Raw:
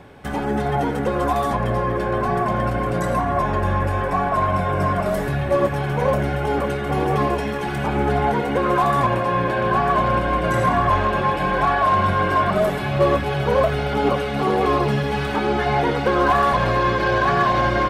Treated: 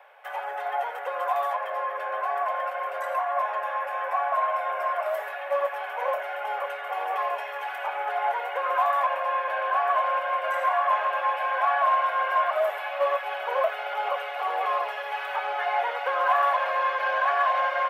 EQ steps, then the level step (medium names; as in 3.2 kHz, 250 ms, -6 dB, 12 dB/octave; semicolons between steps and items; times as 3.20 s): steep high-pass 560 Hz 48 dB/octave; high-order bell 6.2 kHz -12 dB; -4.0 dB